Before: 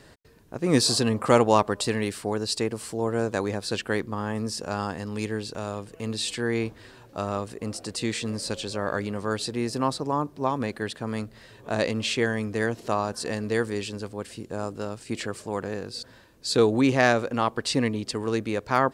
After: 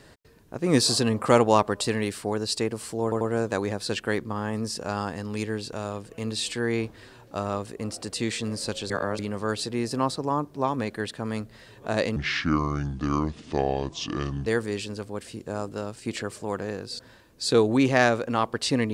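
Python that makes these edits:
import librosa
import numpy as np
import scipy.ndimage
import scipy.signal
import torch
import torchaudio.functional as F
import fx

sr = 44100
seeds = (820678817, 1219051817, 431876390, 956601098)

y = fx.edit(x, sr, fx.stutter(start_s=3.03, slice_s=0.09, count=3),
    fx.reverse_span(start_s=8.72, length_s=0.29),
    fx.speed_span(start_s=11.98, length_s=1.52, speed=0.66), tone=tone)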